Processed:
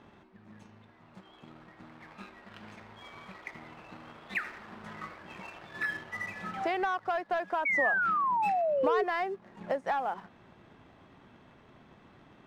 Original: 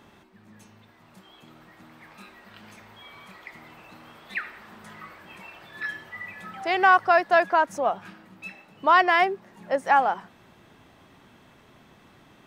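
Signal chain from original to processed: Bessel low-pass 5400 Hz; high shelf 2700 Hz -7.5 dB; sample leveller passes 1; compressor 12:1, threshold -28 dBFS, peak gain reduction 16 dB; painted sound fall, 7.65–9.04, 400–2300 Hz -28 dBFS

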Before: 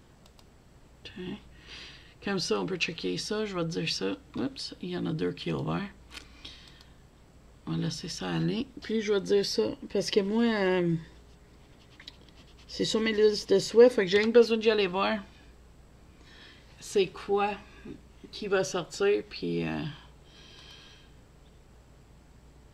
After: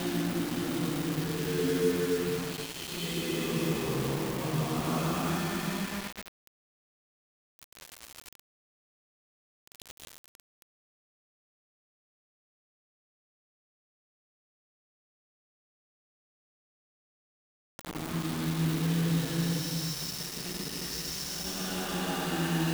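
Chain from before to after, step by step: modulation noise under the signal 24 dB; Paulstretch 6.7×, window 0.25 s, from 4.97; requantised 6-bit, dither none

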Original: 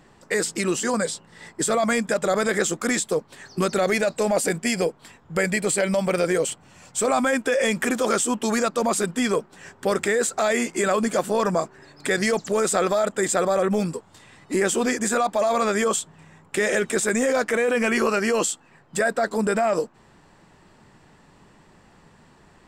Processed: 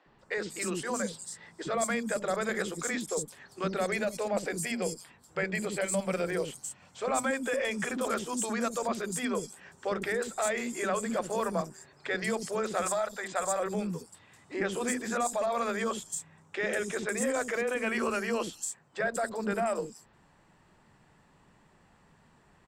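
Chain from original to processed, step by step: 12.81–13.6 resonant low shelf 540 Hz -7.5 dB, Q 1.5; added harmonics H 2 -24 dB, 6 -44 dB, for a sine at -8 dBFS; three bands offset in time mids, lows, highs 60/190 ms, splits 340/4900 Hz; gain -8 dB

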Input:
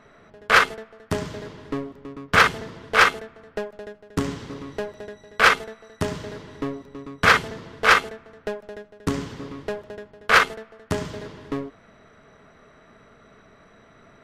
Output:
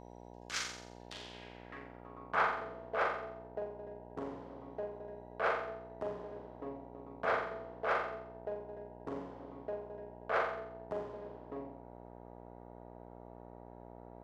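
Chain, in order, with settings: band-pass sweep 6300 Hz -> 640 Hz, 0.68–2.61; flutter echo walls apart 7.5 m, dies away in 0.65 s; buzz 60 Hz, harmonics 16, -45 dBFS -1 dB/oct; gain -7.5 dB

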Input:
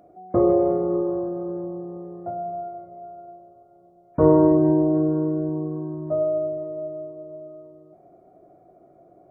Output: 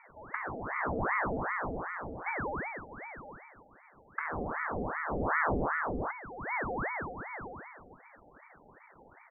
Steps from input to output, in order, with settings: comb 1.6 ms, depth 39%; limiter -15 dBFS, peak gain reduction 11 dB; negative-ratio compressor -26 dBFS, ratio -0.5; Gaussian blur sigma 13 samples; ring modulator with a swept carrier 860 Hz, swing 90%, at 2.6 Hz

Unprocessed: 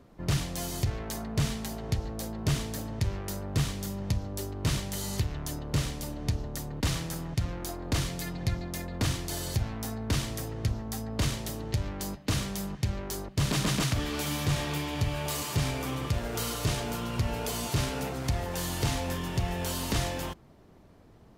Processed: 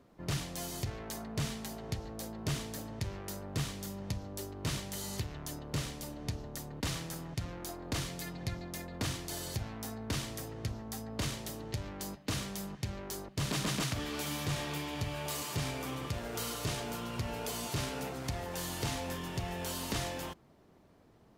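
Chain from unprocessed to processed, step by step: low shelf 96 Hz -9 dB; gain -4.5 dB

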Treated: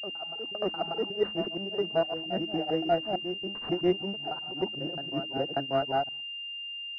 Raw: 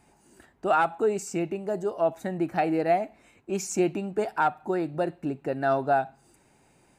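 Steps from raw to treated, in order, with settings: local time reversal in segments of 0.118 s; dynamic EQ 1100 Hz, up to -3 dB, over -34 dBFS, Q 1.1; grains 0.218 s, grains 5.3/s, pitch spread up and down by 0 st; gate -52 dBFS, range -34 dB; de-hum 105.3 Hz, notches 3; reverse echo 0.588 s -10.5 dB; careless resampling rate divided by 3×, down none, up hold; pulse-width modulation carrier 2800 Hz

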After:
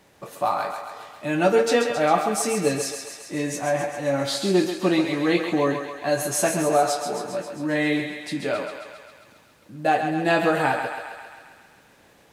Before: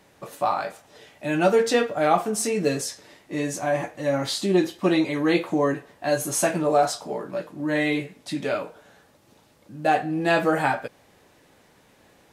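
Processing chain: crackle 160/s -53 dBFS; thinning echo 0.134 s, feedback 68%, high-pass 450 Hz, level -6.5 dB

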